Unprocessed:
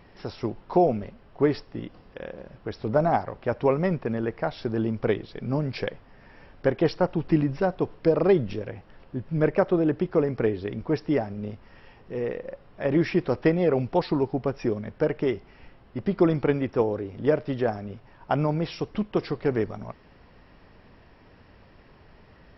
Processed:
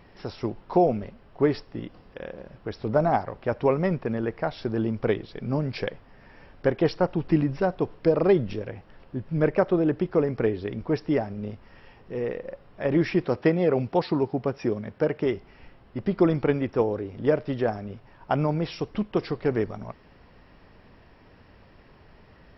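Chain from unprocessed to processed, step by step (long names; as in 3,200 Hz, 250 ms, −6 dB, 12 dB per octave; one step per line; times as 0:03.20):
0:13.25–0:15.26: high-pass filter 80 Hz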